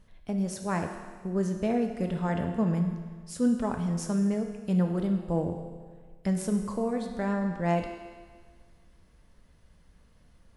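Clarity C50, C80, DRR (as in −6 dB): 6.0 dB, 7.5 dB, 4.0 dB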